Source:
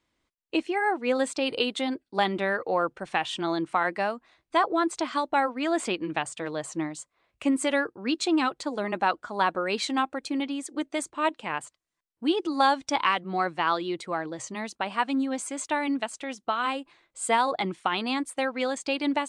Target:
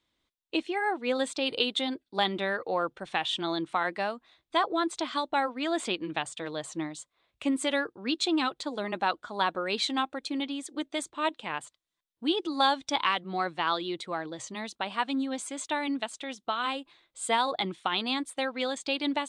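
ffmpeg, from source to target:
-af "equalizer=f=3.6k:t=o:w=0.44:g=9.5,volume=-3.5dB"

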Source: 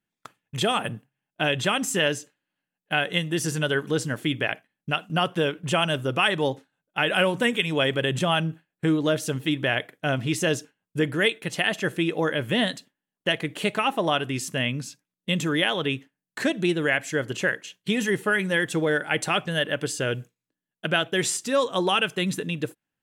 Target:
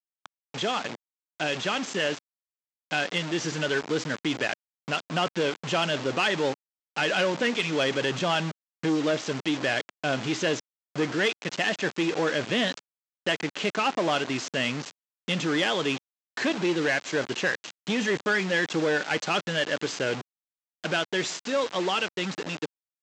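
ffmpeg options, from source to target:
-af "dynaudnorm=f=860:g=7:m=6dB,aresample=16000,acrusher=bits=4:mix=0:aa=0.000001,aresample=44100,asoftclip=type=tanh:threshold=-16.5dB,aeval=exprs='0.15*(cos(1*acos(clip(val(0)/0.15,-1,1)))-cos(1*PI/2))+0.00266*(cos(7*acos(clip(val(0)/0.15,-1,1)))-cos(7*PI/2))':c=same,highpass=200,lowpass=5.9k,volume=-2.5dB"

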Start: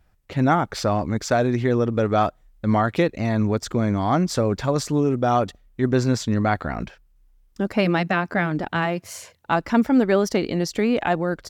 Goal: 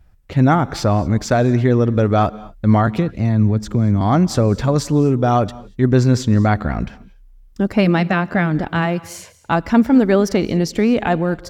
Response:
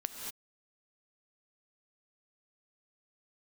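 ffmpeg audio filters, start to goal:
-filter_complex "[0:a]lowshelf=f=190:g=9,asettb=1/sr,asplit=3[a][b][c];[a]atrim=end=2.874[d];[b]atrim=start=2.87:end=4.01,asetpts=PTS-STARTPTS,afade=t=in:d=0.004:c=qsin,afade=t=out:st=1.136:d=0.004:c=qsin,acrossover=split=260[e][f];[f]acompressor=threshold=-30dB:ratio=3[g];[e][g]amix=inputs=2:normalize=0[h];[c]atrim=start=4.006[i];[d][h]acrossfade=d=0.004:c1=hsin:c2=qsin[j];[j][i]acrossfade=d=0.004:c1=qsin:c2=hsin,asplit=2[k][l];[1:a]atrim=start_sample=2205[m];[l][m]afir=irnorm=-1:irlink=0,volume=-14.5dB[n];[k][n]amix=inputs=2:normalize=0,volume=1dB"

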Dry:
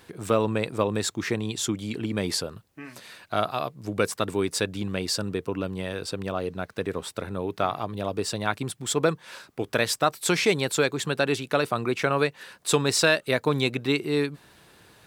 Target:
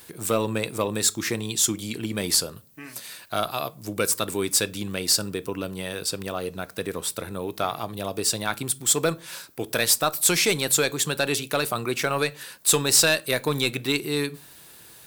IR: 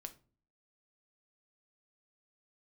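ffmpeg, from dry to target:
-filter_complex "[0:a]aemphasis=mode=production:type=75fm,asoftclip=type=tanh:threshold=-9.5dB,asplit=2[a][b];[1:a]atrim=start_sample=2205[c];[b][c]afir=irnorm=-1:irlink=0,volume=1.5dB[d];[a][d]amix=inputs=2:normalize=0,volume=-4.5dB"

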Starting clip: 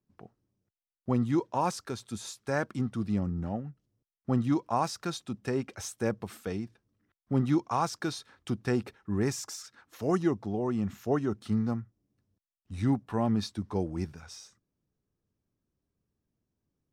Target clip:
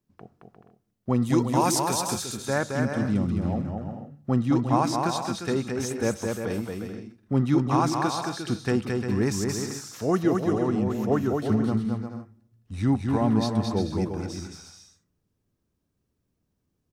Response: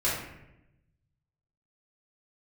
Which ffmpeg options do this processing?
-filter_complex "[0:a]asettb=1/sr,asplit=3[a][b][c];[a]atrim=end=1.224[d];[b]atrim=start=1.22:end=2.14,asetpts=PTS-STARTPTS,afade=t=in:d=0.004:c=qsin,afade=t=out:st=0.916:d=0.004:c=qsin,aemphasis=mode=production:type=75kf[e];[c]atrim=start=2.136[f];[d][e]acrossfade=d=0.004:c1=hsin:c2=qsin[g];[g][f]acrossfade=d=0.004:c1=qsin:c2=hsin,aecho=1:1:220|352|431.2|478.7|507.2:0.631|0.398|0.251|0.158|0.1,asplit=2[h][i];[1:a]atrim=start_sample=2205[j];[i][j]afir=irnorm=-1:irlink=0,volume=-30.5dB[k];[h][k]amix=inputs=2:normalize=0,volume=3.5dB"

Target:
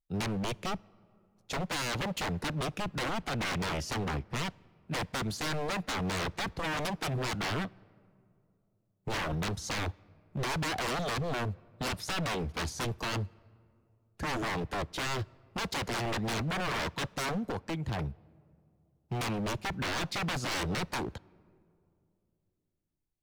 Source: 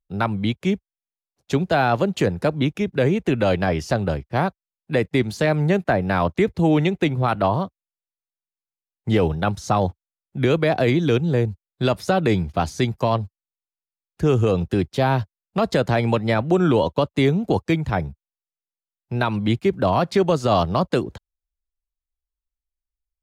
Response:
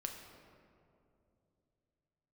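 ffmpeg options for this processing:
-filter_complex "[0:a]asettb=1/sr,asplit=3[a][b][c];[a]atrim=end=17.344[d];[b]atrim=start=17.34:end=17.99,asetpts=PTS-STARTPTS,afade=t=in:d=0.004:c=qsin,afade=t=out:st=0.646:d=0.004:c=qsin,acompressor=threshold=-24dB:ratio=6[e];[c]atrim=start=17.986[f];[d][e]acrossfade=d=0.004:c1=hsin:c2=qsin[g];[g][f]acrossfade=d=0.004:c1=qsin:c2=hsin,aeval=exprs='0.0668*(abs(mod(val(0)/0.0668+3,4)-2)-1)':c=same,asplit=2[h][i];[1:a]atrim=start_sample=2205[j];[i][j]afir=irnorm=-1:irlink=0,volume=-18dB[k];[h][k]amix=inputs=2:normalize=0,volume=-5dB"

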